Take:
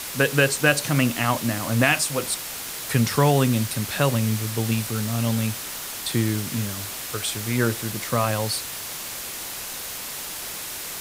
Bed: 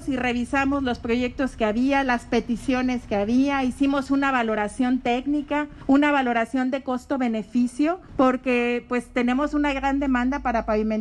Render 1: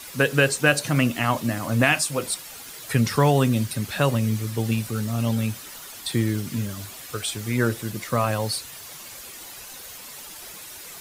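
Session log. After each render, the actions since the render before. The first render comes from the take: noise reduction 10 dB, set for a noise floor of -34 dBFS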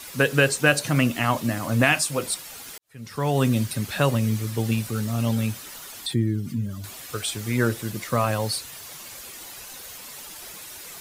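2.78–3.46 s: fade in quadratic; 6.06–6.84 s: spectral contrast enhancement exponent 1.5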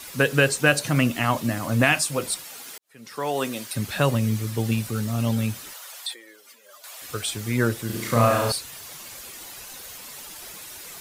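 2.44–3.74 s: high-pass 170 Hz -> 490 Hz; 5.73–7.02 s: elliptic high-pass 520 Hz, stop band 80 dB; 7.86–8.52 s: flutter echo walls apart 5.9 m, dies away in 0.85 s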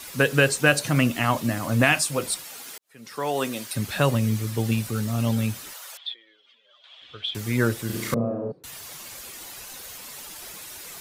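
5.97–7.35 s: four-pole ladder low-pass 3.5 kHz, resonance 80%; 8.14–8.64 s: Chebyshev band-pass 160–440 Hz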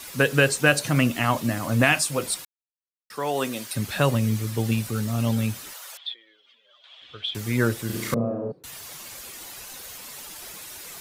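2.45–3.10 s: mute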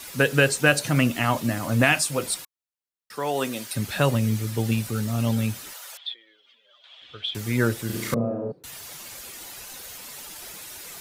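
band-stop 1.1 kHz, Q 23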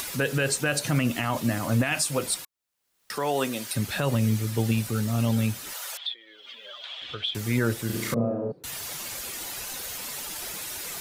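peak limiter -14 dBFS, peak gain reduction 10.5 dB; upward compressor, threshold -28 dBFS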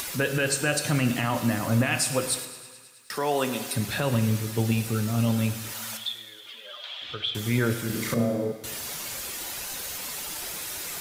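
thinning echo 106 ms, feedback 78%, high-pass 490 Hz, level -18 dB; plate-style reverb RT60 1.4 s, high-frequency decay 0.9×, DRR 8.5 dB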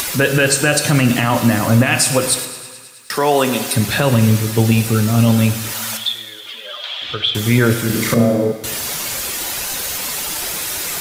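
trim +11.5 dB; peak limiter -3 dBFS, peak gain reduction 3 dB

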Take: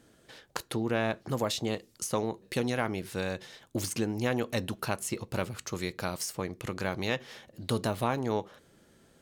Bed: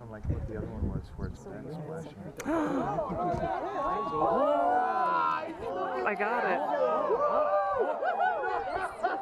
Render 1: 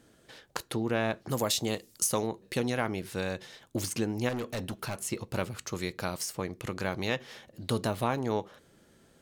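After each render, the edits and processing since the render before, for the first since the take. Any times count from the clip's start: 1.30–2.27 s: treble shelf 5.9 kHz +11.5 dB; 4.29–4.96 s: hard clipper -30.5 dBFS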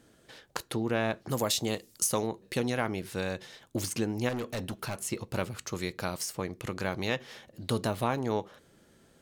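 no audible change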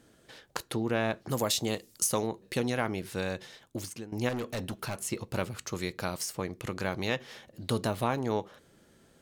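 3.46–4.12 s: fade out, to -17 dB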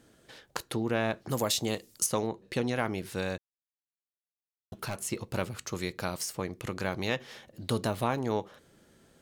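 2.06–2.76 s: treble shelf 8.7 kHz -12 dB; 3.38–4.72 s: mute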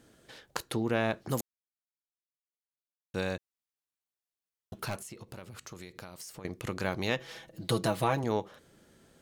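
1.41–3.14 s: mute; 4.97–6.45 s: compression, threshold -42 dBFS; 7.18–8.24 s: comb 6.1 ms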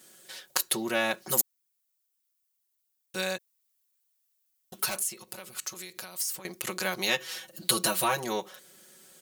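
RIAA curve recording; comb 5.4 ms, depth 98%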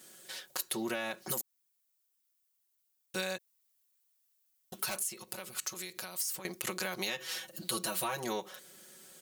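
peak limiter -16.5 dBFS, peak gain reduction 11.5 dB; compression 6:1, threshold -31 dBFS, peak gain reduction 8 dB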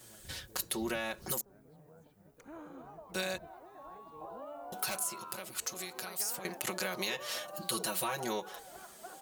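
add bed -19.5 dB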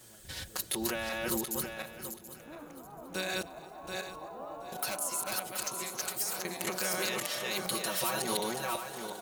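backward echo that repeats 365 ms, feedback 44%, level 0 dB; feedback delay 277 ms, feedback 53%, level -21.5 dB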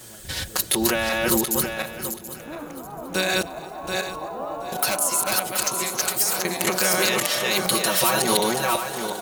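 trim +12 dB

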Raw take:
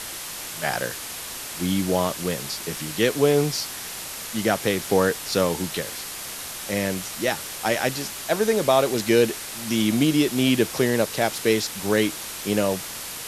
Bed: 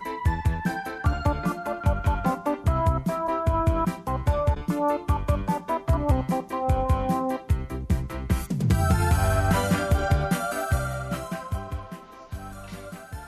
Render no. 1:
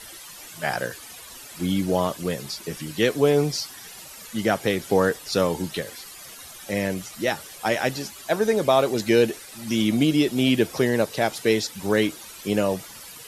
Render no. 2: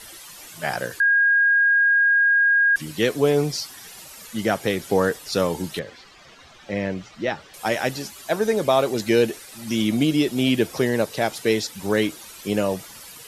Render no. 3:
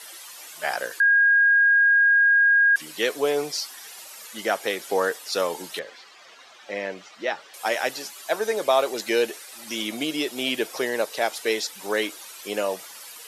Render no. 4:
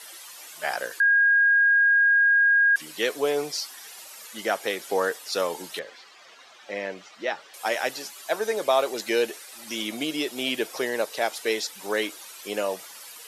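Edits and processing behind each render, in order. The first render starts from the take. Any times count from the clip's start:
noise reduction 13 dB, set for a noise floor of -35 dBFS
1.00–2.76 s: bleep 1.63 kHz -14 dBFS; 5.79–7.54 s: distance through air 170 m
high-pass 490 Hz 12 dB/octave
trim -1.5 dB

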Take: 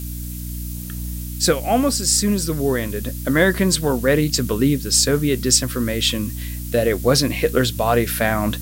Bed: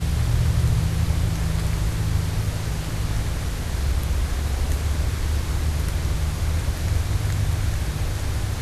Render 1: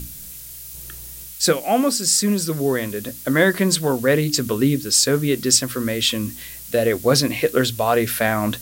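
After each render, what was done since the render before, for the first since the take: hum notches 60/120/180/240/300 Hz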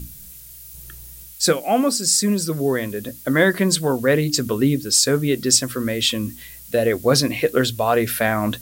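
noise reduction 6 dB, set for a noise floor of -37 dBFS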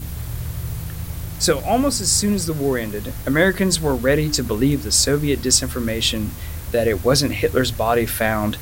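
add bed -7.5 dB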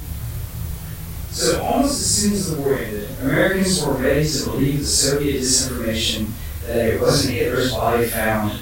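phase randomisation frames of 200 ms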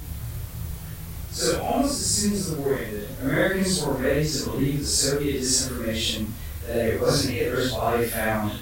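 trim -5 dB

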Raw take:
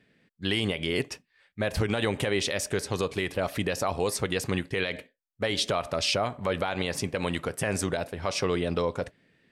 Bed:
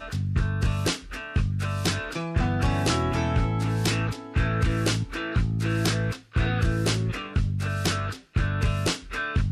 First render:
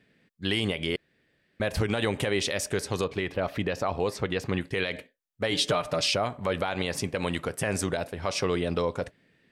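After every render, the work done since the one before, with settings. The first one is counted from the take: 0.96–1.60 s: room tone; 3.04–4.61 s: peaking EQ 10 kHz -14.5 dB 1.4 oct; 5.51–6.08 s: comb 6.6 ms, depth 70%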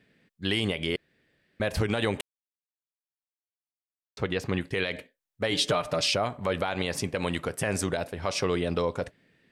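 2.21–4.17 s: mute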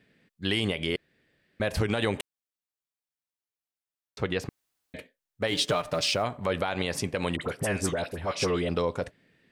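4.49–4.94 s: room tone; 5.47–6.23 s: companding laws mixed up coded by A; 7.36–8.69 s: phase dispersion highs, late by 55 ms, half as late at 1.4 kHz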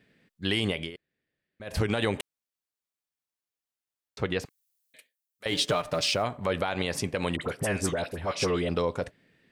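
0.79–1.77 s: dip -15 dB, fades 0.12 s; 4.45–5.46 s: differentiator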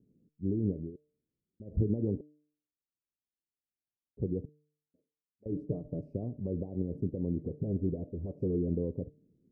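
inverse Chebyshev low-pass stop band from 1.3 kHz, stop band 60 dB; de-hum 149.7 Hz, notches 4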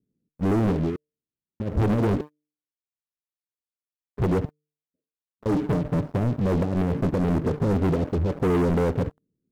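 waveshaping leveller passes 5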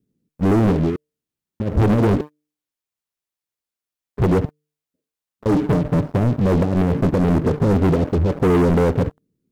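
trim +6 dB

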